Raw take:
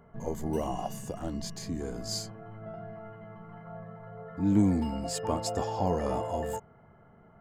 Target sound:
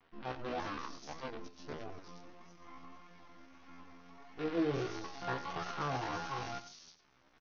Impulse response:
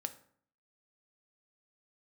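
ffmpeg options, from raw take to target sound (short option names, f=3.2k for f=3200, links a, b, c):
-filter_complex "[0:a]bandreject=f=50:t=h:w=6,bandreject=f=100:t=h:w=6,bandreject=f=150:t=h:w=6,bandreject=f=200:t=h:w=6,bandreject=f=250:t=h:w=6,bandreject=f=300:t=h:w=6,bandreject=f=350:t=h:w=6,bandreject=f=400:t=h:w=6,bandreject=f=450:t=h:w=6,aresample=8000,acrusher=bits=6:dc=4:mix=0:aa=0.000001,aresample=44100,acrossover=split=2700[a][b];[b]adelay=350[c];[a][c]amix=inputs=2:normalize=0,flanger=delay=19:depth=5.9:speed=1.6,asplit=2[d][e];[1:a]atrim=start_sample=2205,atrim=end_sample=3087,adelay=96[f];[e][f]afir=irnorm=-1:irlink=0,volume=-12dB[g];[d][g]amix=inputs=2:normalize=0,asetrate=70004,aresample=44100,atempo=0.629961,volume=-5dB"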